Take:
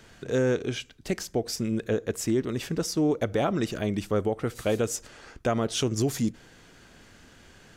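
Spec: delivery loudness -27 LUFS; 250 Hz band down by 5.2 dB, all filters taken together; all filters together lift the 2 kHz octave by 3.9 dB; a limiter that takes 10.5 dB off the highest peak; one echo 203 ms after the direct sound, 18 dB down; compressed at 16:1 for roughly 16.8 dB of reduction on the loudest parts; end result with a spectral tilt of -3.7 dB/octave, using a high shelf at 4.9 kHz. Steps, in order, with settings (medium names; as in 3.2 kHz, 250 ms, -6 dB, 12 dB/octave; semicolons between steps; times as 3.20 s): peaking EQ 250 Hz -7 dB; peaking EQ 2 kHz +4.5 dB; treble shelf 4.9 kHz +4.5 dB; compression 16:1, threshold -39 dBFS; peak limiter -34 dBFS; delay 203 ms -18 dB; trim +18.5 dB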